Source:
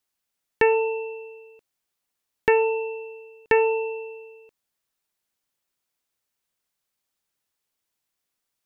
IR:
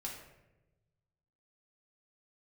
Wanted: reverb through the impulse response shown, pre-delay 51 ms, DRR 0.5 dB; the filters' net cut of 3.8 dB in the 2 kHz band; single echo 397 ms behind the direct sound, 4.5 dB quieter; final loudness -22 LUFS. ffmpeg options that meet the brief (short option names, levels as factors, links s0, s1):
-filter_complex "[0:a]equalizer=f=2000:t=o:g=-5,aecho=1:1:397:0.596,asplit=2[s0][s1];[1:a]atrim=start_sample=2205,adelay=51[s2];[s1][s2]afir=irnorm=-1:irlink=0,volume=1.06[s3];[s0][s3]amix=inputs=2:normalize=0"